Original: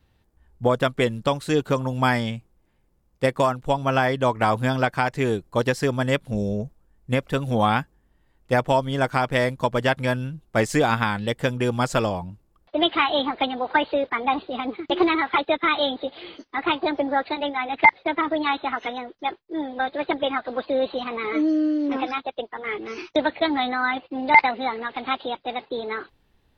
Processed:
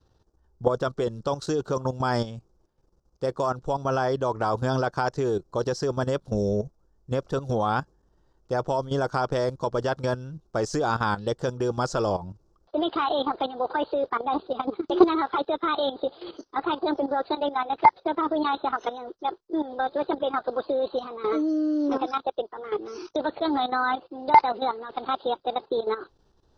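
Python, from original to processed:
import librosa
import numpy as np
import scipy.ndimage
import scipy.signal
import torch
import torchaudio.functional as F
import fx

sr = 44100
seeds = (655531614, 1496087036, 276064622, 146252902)

y = fx.curve_eq(x, sr, hz=(160.0, 250.0, 370.0, 670.0, 1400.0, 2100.0, 5700.0, 11000.0), db=(0, -3, 6, 2, 2, -15, 8, -15))
y = fx.level_steps(y, sr, step_db=13)
y = F.gain(torch.from_numpy(y), 2.0).numpy()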